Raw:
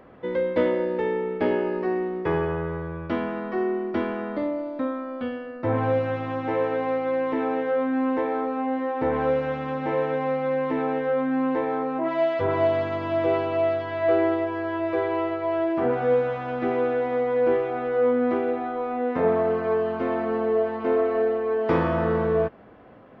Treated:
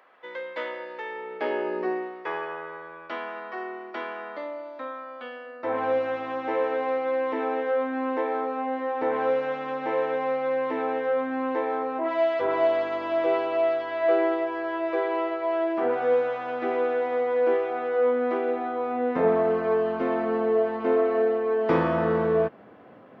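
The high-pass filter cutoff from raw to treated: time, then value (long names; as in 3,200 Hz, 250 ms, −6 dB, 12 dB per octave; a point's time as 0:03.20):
0:01.08 1,000 Hz
0:01.85 300 Hz
0:02.17 750 Hz
0:05.24 750 Hz
0:05.95 360 Hz
0:18.37 360 Hz
0:18.96 140 Hz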